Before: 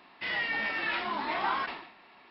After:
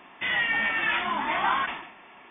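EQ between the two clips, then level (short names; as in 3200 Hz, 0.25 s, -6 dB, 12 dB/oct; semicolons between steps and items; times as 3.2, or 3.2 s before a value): dynamic EQ 440 Hz, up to -7 dB, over -51 dBFS, Q 1.2; brick-wall FIR low-pass 3600 Hz; +6.5 dB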